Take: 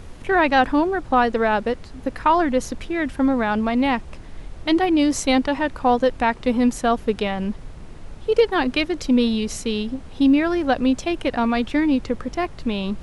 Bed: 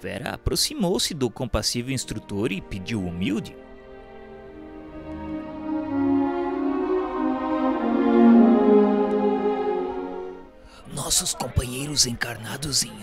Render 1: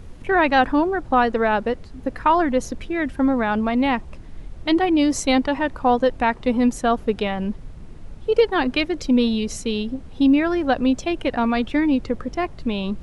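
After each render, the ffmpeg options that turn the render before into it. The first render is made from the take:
-af "afftdn=nr=6:nf=-39"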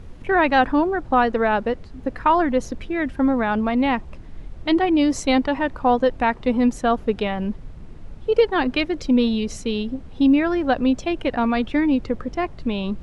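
-af "highshelf=f=7.5k:g=-9.5"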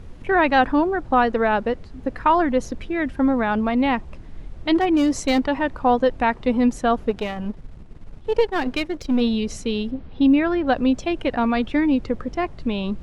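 -filter_complex "[0:a]asplit=3[a][b][c];[a]afade=t=out:st=4.74:d=0.02[d];[b]asoftclip=type=hard:threshold=-13dB,afade=t=in:st=4.74:d=0.02,afade=t=out:st=5.45:d=0.02[e];[c]afade=t=in:st=5.45:d=0.02[f];[d][e][f]amix=inputs=3:normalize=0,asplit=3[g][h][i];[g]afade=t=out:st=7.09:d=0.02[j];[h]aeval=exprs='if(lt(val(0),0),0.447*val(0),val(0))':c=same,afade=t=in:st=7.09:d=0.02,afade=t=out:st=9.2:d=0.02[k];[i]afade=t=in:st=9.2:d=0.02[l];[j][k][l]amix=inputs=3:normalize=0,asettb=1/sr,asplit=3[m][n][o];[m]atrim=end=9.914[p];[n]atrim=start=9.91:end=10.67,asetpts=PTS-STARTPTS,afade=t=in:d=0.004:c=qsin,afade=t=out:st=0.756:d=0.004:c=qsin,lowpass=f=4.6k:w=0.5412,lowpass=f=4.6k:w=1.3066[q];[o]atrim=start=10.666[r];[p][q]acrossfade=d=0.004:c1=hsin:c2=qsin[s];[s][r]acrossfade=d=0.004:c1=qsin:c2=hsin"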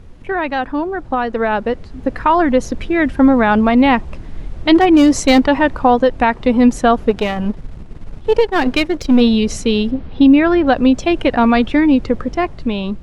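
-af "alimiter=limit=-11dB:level=0:latency=1:release=250,dynaudnorm=f=720:g=5:m=11.5dB"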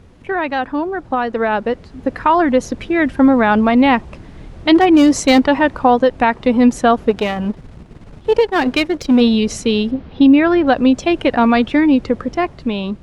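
-af "highpass=f=89:p=1"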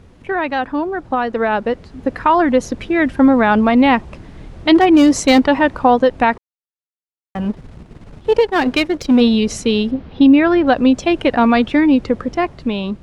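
-filter_complex "[0:a]asplit=3[a][b][c];[a]atrim=end=6.38,asetpts=PTS-STARTPTS,afade=t=out:st=6.376:d=0.004:c=hsin[d];[b]atrim=start=6.38:end=7.35,asetpts=PTS-STARTPTS,volume=0[e];[c]atrim=start=7.35,asetpts=PTS-STARTPTS,afade=t=in:d=0.004:c=hsin[f];[d][e][f]concat=n=3:v=0:a=1"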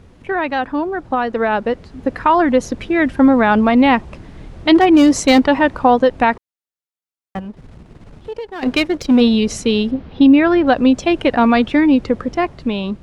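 -filter_complex "[0:a]asettb=1/sr,asplit=3[a][b][c];[a]atrim=end=7.394[d];[b]atrim=start=7.39:end=8.63,asetpts=PTS-STARTPTS,afade=t=in:d=0.004:c=qsin,afade=t=out:st=1.236:d=0.004:c=qsin,acompressor=threshold=-36dB:ratio=2:attack=3.2:release=140:knee=1:detection=peak[e];[c]atrim=start=8.626[f];[d][e]acrossfade=d=0.004:c1=hsin:c2=qsin[g];[g][f]acrossfade=d=0.004:c1=qsin:c2=hsin"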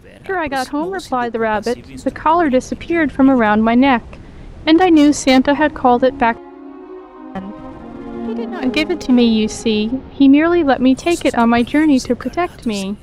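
-filter_complex "[1:a]volume=-10dB[a];[0:a][a]amix=inputs=2:normalize=0"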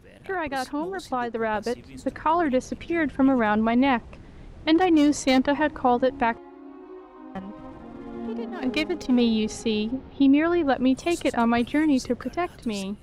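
-af "volume=-9dB"

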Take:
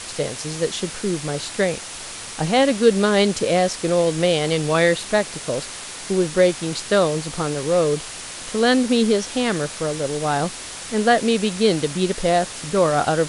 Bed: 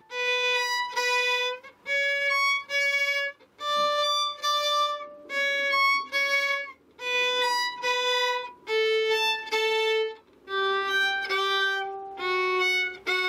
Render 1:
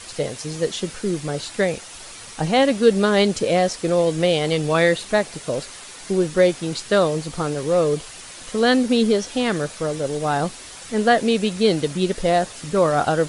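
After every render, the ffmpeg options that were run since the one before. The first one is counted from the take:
-af "afftdn=nr=7:nf=-34"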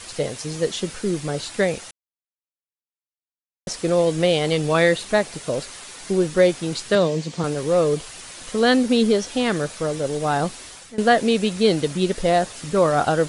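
-filter_complex "[0:a]asettb=1/sr,asplit=3[a][b][c];[a]atrim=end=6.954[d];[b]atrim=start=6.95:end=7.44,asetpts=PTS-STARTPTS,afade=t=in:d=0.004:c=qsin,afade=t=out:st=0.486:d=0.004:c=qsin,highpass=170,equalizer=f=170:t=q:w=4:g=7,equalizer=f=780:t=q:w=4:g=-5,equalizer=f=1.3k:t=q:w=4:g=-9,lowpass=f=7.6k:w=0.5412,lowpass=f=7.6k:w=1.3066[e];[c]atrim=start=7.436[f];[d][e]acrossfade=d=0.004:c1=hsin:c2=qsin[g];[g][f]acrossfade=d=0.004:c1=qsin:c2=hsin,asplit=4[h][i][j][k];[h]atrim=end=1.91,asetpts=PTS-STARTPTS,afade=t=out:st=1.906:d=0.004:c=hsin[l];[i]atrim=start=1.91:end=3.67,asetpts=PTS-STARTPTS,volume=0[m];[j]atrim=start=3.67:end=10.98,asetpts=PTS-STARTPTS,afade=t=in:d=0.004:c=hsin,afade=t=out:st=6.88:d=0.43:c=qsin:silence=0.105925[n];[k]atrim=start=10.98,asetpts=PTS-STARTPTS,afade=t=in:d=0.004:c=hsin:silence=0.105925[o];[l][m][n][o]concat=n=4:v=0:a=1"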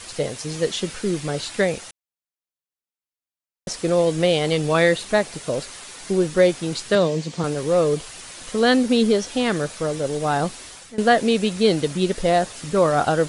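-filter_complex "[0:a]asettb=1/sr,asplit=3[a][b][c];[a]atrim=end=0.494[d];[b]atrim=start=0.49:end=1.62,asetpts=PTS-STARTPTS,afade=t=in:d=0.004:c=qsin,afade=t=out:st=1.126:d=0.004:c=qsin,equalizer=f=2.7k:t=o:w=1.8:g=2.5[e];[c]atrim=start=1.616[f];[d][e]acrossfade=d=0.004:c1=hsin:c2=qsin[g];[g][f]acrossfade=d=0.004:c1=qsin:c2=hsin"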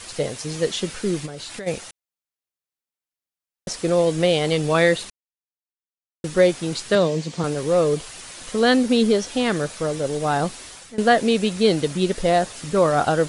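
-filter_complex "[0:a]asplit=3[a][b][c];[a]afade=t=out:st=1.25:d=0.02[d];[b]acompressor=threshold=-30dB:ratio=8:attack=3.2:release=140:knee=1:detection=peak,afade=t=in:st=1.25:d=0.02,afade=t=out:st=1.66:d=0.02[e];[c]afade=t=in:st=1.66:d=0.02[f];[d][e][f]amix=inputs=3:normalize=0,asplit=3[g][h][i];[g]atrim=end=5.1,asetpts=PTS-STARTPTS,afade=t=out:st=5.096:d=0.004:c=hsin[j];[h]atrim=start=5.1:end=6.24,asetpts=PTS-STARTPTS,volume=0[k];[i]atrim=start=6.24,asetpts=PTS-STARTPTS,afade=t=in:d=0.004:c=hsin[l];[j][k][l]concat=n=3:v=0:a=1"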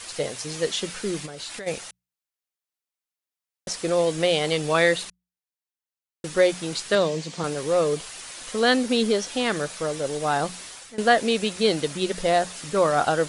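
-af "lowshelf=f=410:g=-7.5,bandreject=f=60:t=h:w=6,bandreject=f=120:t=h:w=6,bandreject=f=180:t=h:w=6"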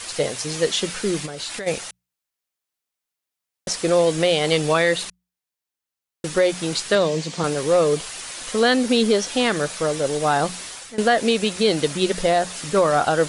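-af "acontrast=30,alimiter=limit=-8.5dB:level=0:latency=1:release=175"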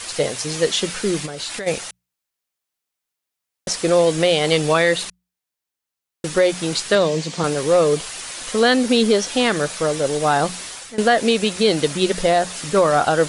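-af "volume=2dB"

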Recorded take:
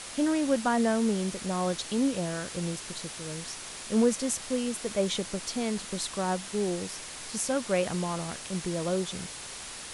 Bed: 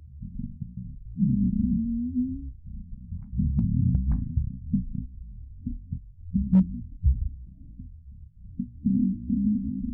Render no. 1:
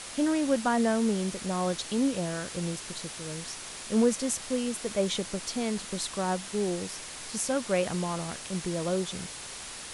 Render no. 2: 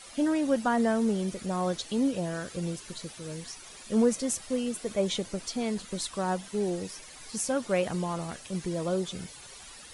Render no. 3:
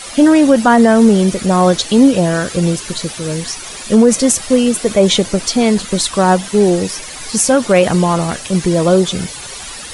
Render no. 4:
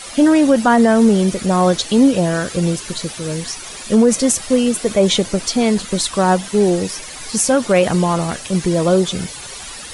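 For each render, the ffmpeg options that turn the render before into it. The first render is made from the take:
-af anull
-af "afftdn=nr=12:nf=-42"
-af "acontrast=65,alimiter=level_in=12dB:limit=-1dB:release=50:level=0:latency=1"
-af "volume=-3dB"

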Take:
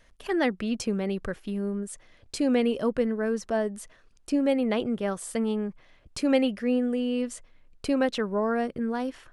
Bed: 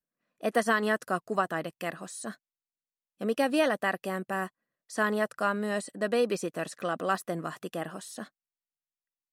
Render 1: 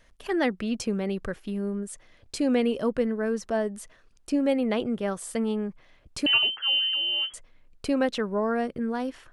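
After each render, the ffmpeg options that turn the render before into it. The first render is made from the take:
-filter_complex "[0:a]asettb=1/sr,asplit=3[a][b][c];[a]atrim=end=6.264[d];[b]atrim=start=6.26:end=7.34,asetpts=PTS-STARTPTS,afade=t=in:d=0.004:c=qsin,afade=t=out:st=1.076:d=0.004:c=qsin,lowpass=f=2.8k:t=q:w=0.5098,lowpass=f=2.8k:t=q:w=0.6013,lowpass=f=2.8k:t=q:w=0.9,lowpass=f=2.8k:t=q:w=2.563,afreqshift=-3300[e];[c]atrim=start=7.336[f];[d][e]acrossfade=d=0.004:c1=hsin:c2=qsin[g];[g][f]acrossfade=d=0.004:c1=qsin:c2=hsin"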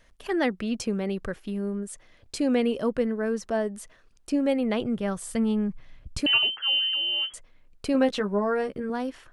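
-filter_complex "[0:a]asettb=1/sr,asplit=3[a][b][c];[a]atrim=end=4.364[d];[b]atrim=start=4.36:end=6.2,asetpts=PTS-STARTPTS,afade=t=in:d=0.004:c=qsin,afade=t=out:st=1.836:d=0.004:c=qsin,asubboost=boost=7.5:cutoff=210[e];[c]atrim=start=6.196[f];[d][e]acrossfade=d=0.004:c1=hsin:c2=qsin[g];[g][f]acrossfade=d=0.004:c1=qsin:c2=hsin,asettb=1/sr,asplit=3[h][i][j];[h]atrim=end=7.934[k];[i]atrim=start=7.93:end=8.9,asetpts=PTS-STARTPTS,afade=t=in:d=0.004:c=qsin,afade=t=out:st=0.966:d=0.004:c=qsin,asplit=2[l][m];[m]adelay=15,volume=-5dB[n];[l][n]amix=inputs=2:normalize=0,atrim=end_sample=42777[o];[j]atrim=start=8.896[p];[k][o]acrossfade=d=0.004:c1=hsin:c2=qsin[q];[q][p]acrossfade=d=0.004:c1=qsin:c2=hsin"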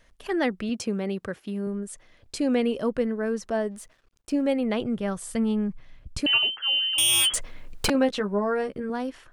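-filter_complex "[0:a]asettb=1/sr,asplit=3[a][b][c];[a]atrim=end=0.694[d];[b]atrim=start=0.69:end=1.67,asetpts=PTS-STARTPTS,afade=t=in:d=0.004:c=qsin,afade=t=out:st=0.976:d=0.004:c=qsin,highpass=89[e];[c]atrim=start=1.666[f];[d][e]acrossfade=d=0.004:c1=hsin:c2=qsin[g];[g][f]acrossfade=d=0.004:c1=qsin:c2=hsin,asplit=3[h][i][j];[h]afade=t=out:st=3.7:d=0.02[k];[i]aeval=exprs='sgn(val(0))*max(abs(val(0))-0.00112,0)':c=same,afade=t=in:st=3.7:d=0.02,afade=t=out:st=4.41:d=0.02[l];[j]afade=t=in:st=4.41:d=0.02[m];[k][l][m]amix=inputs=3:normalize=0,asettb=1/sr,asplit=3[n][o][p];[n]atrim=end=6.984[q];[o]atrim=start=6.98:end=7.9,asetpts=PTS-STARTPTS,afade=t=in:d=0.004:c=qsin,afade=t=out:st=0.916:d=0.004:c=qsin,aeval=exprs='0.133*sin(PI/2*4.47*val(0)/0.133)':c=same[r];[p]atrim=start=7.896[s];[q][r]acrossfade=d=0.004:c1=hsin:c2=qsin[t];[t][s]acrossfade=d=0.004:c1=qsin:c2=hsin"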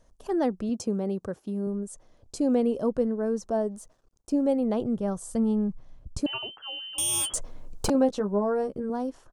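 -af "firequalizer=gain_entry='entry(840,0);entry(2000,-17);entry(6200,-1);entry(15000,-8)':delay=0.05:min_phase=1"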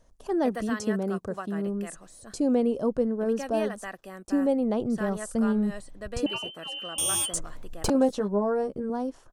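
-filter_complex "[1:a]volume=-9.5dB[a];[0:a][a]amix=inputs=2:normalize=0"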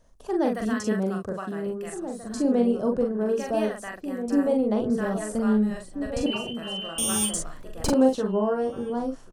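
-filter_complex "[0:a]asplit=2[a][b];[b]adelay=42,volume=-3.5dB[c];[a][c]amix=inputs=2:normalize=0,asplit=2[d][e];[e]adelay=1633,volume=-9dB,highshelf=f=4k:g=-36.7[f];[d][f]amix=inputs=2:normalize=0"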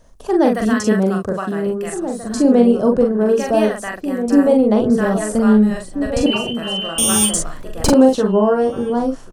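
-af "volume=10dB,alimiter=limit=-1dB:level=0:latency=1"

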